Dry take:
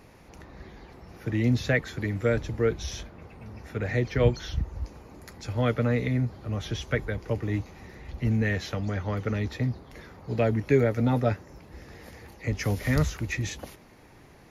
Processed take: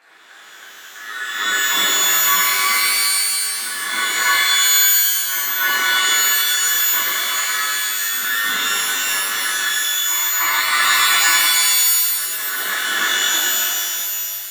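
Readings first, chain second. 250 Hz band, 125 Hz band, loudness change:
-12.5 dB, under -25 dB, +13.0 dB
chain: on a send: reverse echo 0.316 s -7.5 dB; on the sum: ring modulator 1600 Hz; HPF 330 Hz 12 dB/oct; shimmer reverb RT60 2.5 s, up +12 st, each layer -2 dB, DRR -10.5 dB; gain -3.5 dB

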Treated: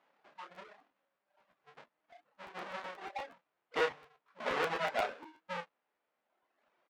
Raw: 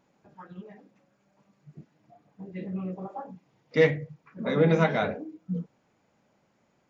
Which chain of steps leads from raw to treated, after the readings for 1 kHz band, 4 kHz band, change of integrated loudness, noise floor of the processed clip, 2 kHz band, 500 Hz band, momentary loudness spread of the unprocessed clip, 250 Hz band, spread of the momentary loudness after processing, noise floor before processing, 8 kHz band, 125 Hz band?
-2.5 dB, -2.0 dB, -10.5 dB, -85 dBFS, -5.5 dB, -12.0 dB, 23 LU, -21.0 dB, 20 LU, -70 dBFS, n/a, -27.5 dB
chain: half-waves squared off; reverb removal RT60 1.5 s; compressor 6:1, threshold -22 dBFS, peak gain reduction 9.5 dB; BPF 680–2700 Hz; doubler 29 ms -5 dB; crackling interface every 0.12 s, samples 512, repeat, from 0.54; gain -3 dB

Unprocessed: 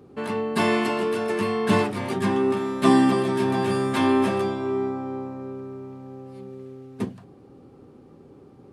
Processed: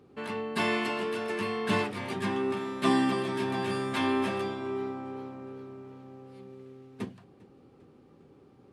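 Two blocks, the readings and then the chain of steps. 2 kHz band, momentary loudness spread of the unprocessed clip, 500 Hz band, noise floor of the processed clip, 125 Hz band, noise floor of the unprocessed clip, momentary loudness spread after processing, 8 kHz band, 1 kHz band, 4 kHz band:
-3.5 dB, 20 LU, -8.0 dB, -58 dBFS, -8.5 dB, -50 dBFS, 21 LU, -7.0 dB, -6.5 dB, -3.0 dB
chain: bell 2700 Hz +6 dB 2.2 oct; warbling echo 0.405 s, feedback 56%, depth 165 cents, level -23 dB; gain -8.5 dB

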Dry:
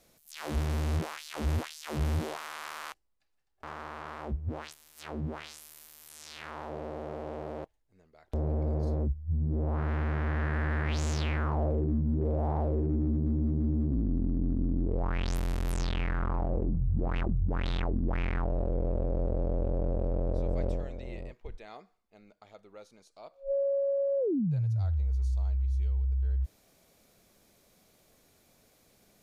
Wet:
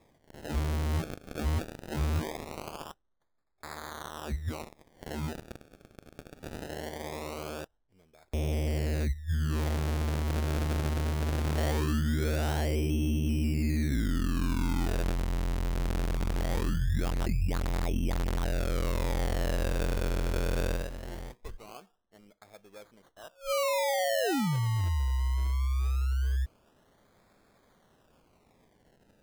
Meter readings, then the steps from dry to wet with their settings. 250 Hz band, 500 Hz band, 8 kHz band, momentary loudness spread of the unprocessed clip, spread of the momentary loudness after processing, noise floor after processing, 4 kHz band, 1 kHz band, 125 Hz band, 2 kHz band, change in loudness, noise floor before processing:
0.0 dB, -1.0 dB, +7.0 dB, 14 LU, 15 LU, -69 dBFS, +6.0 dB, +2.0 dB, 0.0 dB, +3.0 dB, +0.5 dB, -68 dBFS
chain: decimation with a swept rate 30×, swing 100% 0.21 Hz

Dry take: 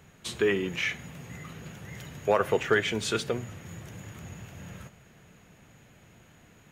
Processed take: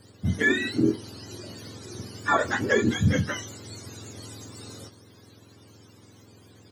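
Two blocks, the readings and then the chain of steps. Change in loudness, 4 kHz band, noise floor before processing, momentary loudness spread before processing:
+3.5 dB, 0.0 dB, -57 dBFS, 18 LU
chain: spectrum mirrored in octaves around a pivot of 850 Hz; doubler 22 ms -10.5 dB; gain +4 dB

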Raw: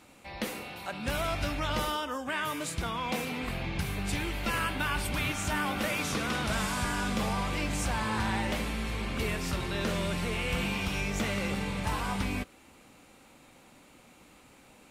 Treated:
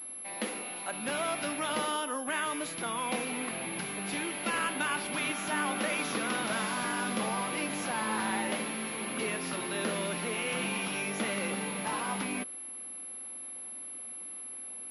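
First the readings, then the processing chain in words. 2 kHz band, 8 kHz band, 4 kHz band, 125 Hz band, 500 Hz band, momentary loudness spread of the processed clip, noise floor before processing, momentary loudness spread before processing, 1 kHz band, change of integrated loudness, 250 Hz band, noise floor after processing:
0.0 dB, +5.0 dB, -1.5 dB, -10.5 dB, 0.0 dB, 9 LU, -57 dBFS, 4 LU, 0.0 dB, -1.0 dB, -2.0 dB, -43 dBFS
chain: HPF 200 Hz 24 dB/oct; pulse-width modulation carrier 11000 Hz

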